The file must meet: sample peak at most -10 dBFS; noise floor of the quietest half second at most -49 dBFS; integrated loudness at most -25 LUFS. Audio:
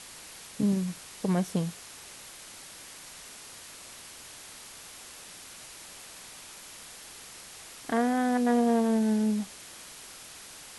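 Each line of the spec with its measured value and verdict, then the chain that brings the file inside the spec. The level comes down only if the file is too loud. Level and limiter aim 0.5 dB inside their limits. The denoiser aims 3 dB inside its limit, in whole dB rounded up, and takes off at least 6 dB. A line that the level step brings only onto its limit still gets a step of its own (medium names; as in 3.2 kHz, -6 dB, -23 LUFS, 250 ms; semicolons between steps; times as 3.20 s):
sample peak -15.5 dBFS: pass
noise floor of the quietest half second -47 dBFS: fail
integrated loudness -28.0 LUFS: pass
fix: noise reduction 6 dB, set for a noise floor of -47 dBFS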